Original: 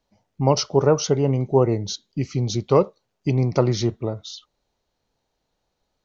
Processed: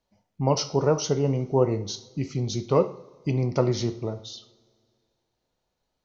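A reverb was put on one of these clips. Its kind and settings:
coupled-rooms reverb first 0.46 s, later 2.2 s, from −21 dB, DRR 8 dB
level −4.5 dB

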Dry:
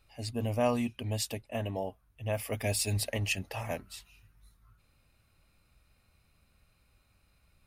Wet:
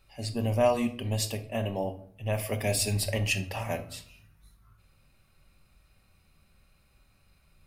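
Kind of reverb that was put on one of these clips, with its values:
rectangular room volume 760 cubic metres, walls furnished, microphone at 1.1 metres
level +2.5 dB

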